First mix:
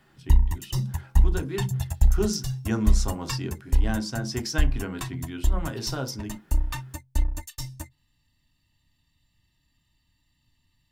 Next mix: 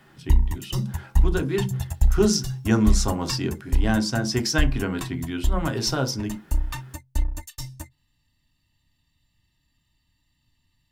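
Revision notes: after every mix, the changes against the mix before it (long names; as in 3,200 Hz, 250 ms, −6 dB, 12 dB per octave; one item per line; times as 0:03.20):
speech +6.5 dB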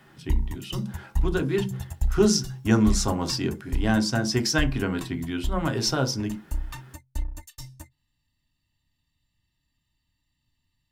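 background −6.0 dB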